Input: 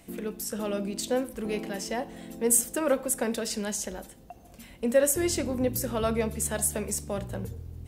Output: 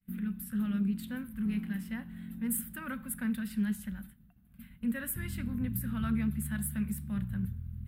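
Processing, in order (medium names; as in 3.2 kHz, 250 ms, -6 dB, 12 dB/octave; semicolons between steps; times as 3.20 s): FFT filter 110 Hz 0 dB, 210 Hz +5 dB, 380 Hz -29 dB, 710 Hz -25 dB, 1.5 kHz -3 dB, 2.3 kHz -9 dB, 3.7 kHz -12 dB, 6.2 kHz -30 dB, 11 kHz -6 dB, 15 kHz 0 dB; expander -46 dBFS; loudspeaker Doppler distortion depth 0.11 ms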